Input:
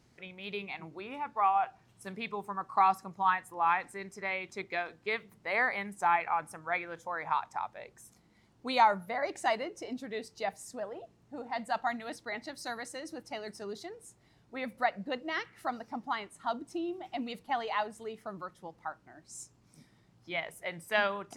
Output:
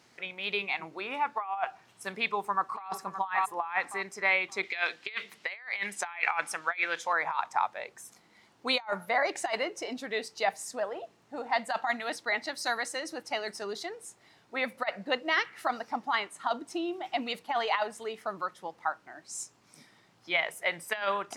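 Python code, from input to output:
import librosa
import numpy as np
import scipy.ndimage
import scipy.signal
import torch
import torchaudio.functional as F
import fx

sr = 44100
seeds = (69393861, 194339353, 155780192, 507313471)

y = fx.echo_throw(x, sr, start_s=2.14, length_s=0.74, ms=570, feedback_pct=20, wet_db=-12.0)
y = fx.weighting(y, sr, curve='D', at=(4.63, 7.13))
y = fx.highpass(y, sr, hz=880.0, slope=6)
y = fx.high_shelf(y, sr, hz=6000.0, db=-6.0)
y = fx.over_compress(y, sr, threshold_db=-35.0, ratio=-0.5)
y = y * librosa.db_to_amplitude(7.0)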